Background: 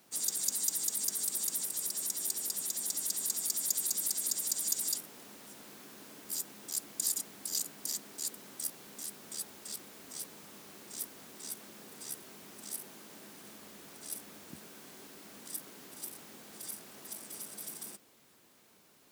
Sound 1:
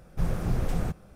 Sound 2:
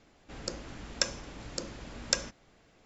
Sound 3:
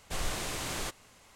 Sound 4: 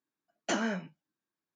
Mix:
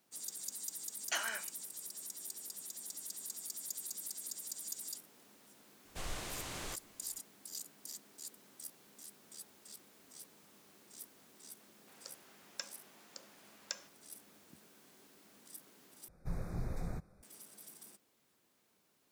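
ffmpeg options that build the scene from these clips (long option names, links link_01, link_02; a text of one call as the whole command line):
ffmpeg -i bed.wav -i cue0.wav -i cue1.wav -i cue2.wav -i cue3.wav -filter_complex "[0:a]volume=-11dB[link_01];[4:a]highpass=1300[link_02];[2:a]highpass=frequency=600:width=0.5412,highpass=frequency=600:width=1.3066[link_03];[1:a]asuperstop=centerf=3000:order=20:qfactor=3[link_04];[link_01]asplit=2[link_05][link_06];[link_05]atrim=end=16.084[link_07];[link_04]atrim=end=1.15,asetpts=PTS-STARTPTS,volume=-12dB[link_08];[link_06]atrim=start=17.226[link_09];[link_02]atrim=end=1.55,asetpts=PTS-STARTPTS,volume=-0.5dB,afade=type=in:duration=0.004:curve=hsin,afade=type=out:start_time=1.546:duration=0.004:curve=hsin,adelay=630[link_10];[3:a]atrim=end=1.35,asetpts=PTS-STARTPTS,volume=-8dB,afade=type=in:duration=0.004:curve=hsin,afade=type=out:start_time=1.346:duration=0.004:curve=hsin,adelay=257985S[link_11];[link_03]atrim=end=2.85,asetpts=PTS-STARTPTS,volume=-14dB,afade=type=in:duration=0.004:curve=hsin,afade=type=out:start_time=2.846:duration=0.004:curve=hsin,adelay=11580[link_12];[link_07][link_08]acrossfade=duration=0.004:curve1=hsin:curve2=hsin[link_13];[link_13][link_09]acrossfade=duration=0.004:curve1=hsin:curve2=hsin[link_14];[link_14][link_10][link_11][link_12]amix=inputs=4:normalize=0" out.wav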